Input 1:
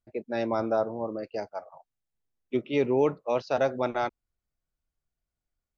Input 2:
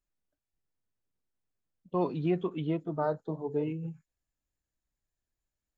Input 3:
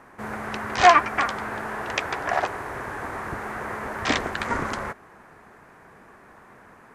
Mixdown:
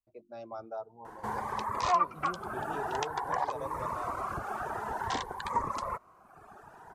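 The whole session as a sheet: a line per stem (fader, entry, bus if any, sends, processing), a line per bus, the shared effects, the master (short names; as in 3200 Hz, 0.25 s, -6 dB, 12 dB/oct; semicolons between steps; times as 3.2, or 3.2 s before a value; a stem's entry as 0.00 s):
-14.5 dB, 0.00 s, no send, reverb removal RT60 0.9 s; notches 50/100/150/200/250/300/350 Hz
-13.5 dB, 0.00 s, no send, dry
+0.5 dB, 1.05 s, no send, reverb removal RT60 1.1 s; compressor 2.5:1, threshold -35 dBFS, peak gain reduction 17 dB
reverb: off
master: graphic EQ 250/1000/2000 Hz -5/+12/-8 dB; cascading phaser rising 0.51 Hz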